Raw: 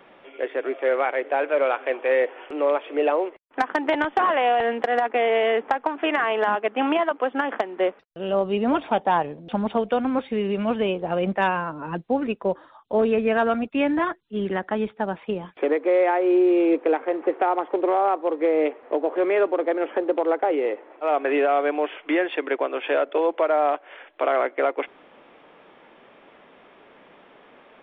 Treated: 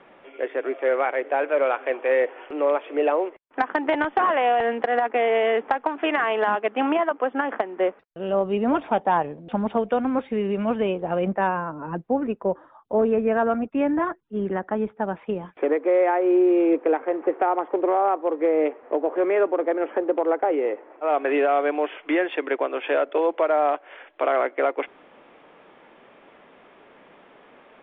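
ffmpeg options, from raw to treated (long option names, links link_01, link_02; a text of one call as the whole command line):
ffmpeg -i in.wav -af "asetnsamples=nb_out_samples=441:pad=0,asendcmd='5.55 lowpass f 3900;6.81 lowpass f 2400;11.28 lowpass f 1500;15.02 lowpass f 2200;21.1 lowpass f 3700',lowpass=3000" out.wav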